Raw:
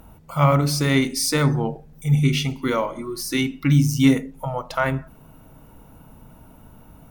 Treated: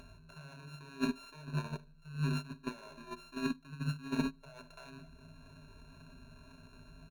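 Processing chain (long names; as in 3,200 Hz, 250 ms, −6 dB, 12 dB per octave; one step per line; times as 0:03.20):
samples sorted by size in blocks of 32 samples
high-shelf EQ 6,400 Hz −12 dB
brickwall limiter −15.5 dBFS, peak gain reduction 9.5 dB
mains-hum notches 60/120/180/240/300/360 Hz
reversed playback
downward compressor 20 to 1, threshold −34 dBFS, peak gain reduction 16 dB
reversed playback
EQ curve with evenly spaced ripples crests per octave 1.5, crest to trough 18 dB
repeating echo 75 ms, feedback 37%, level −19 dB
noise gate −29 dBFS, range −20 dB
upward compression, threshold −49 dBFS
level +2.5 dB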